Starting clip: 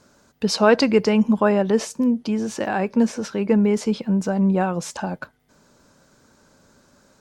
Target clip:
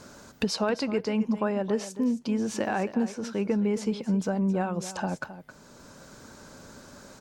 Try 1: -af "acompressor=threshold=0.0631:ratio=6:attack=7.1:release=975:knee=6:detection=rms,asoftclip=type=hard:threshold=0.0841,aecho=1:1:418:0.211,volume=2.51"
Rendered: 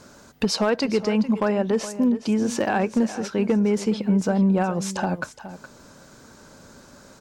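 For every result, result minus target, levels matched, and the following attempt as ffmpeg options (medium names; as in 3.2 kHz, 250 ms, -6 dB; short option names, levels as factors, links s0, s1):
echo 152 ms late; compression: peak gain reduction -6 dB
-af "acompressor=threshold=0.0631:ratio=6:attack=7.1:release=975:knee=6:detection=rms,asoftclip=type=hard:threshold=0.0841,aecho=1:1:266:0.211,volume=2.51"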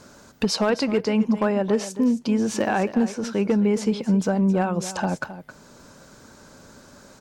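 compression: peak gain reduction -6 dB
-af "acompressor=threshold=0.0282:ratio=6:attack=7.1:release=975:knee=6:detection=rms,asoftclip=type=hard:threshold=0.0841,aecho=1:1:266:0.211,volume=2.51"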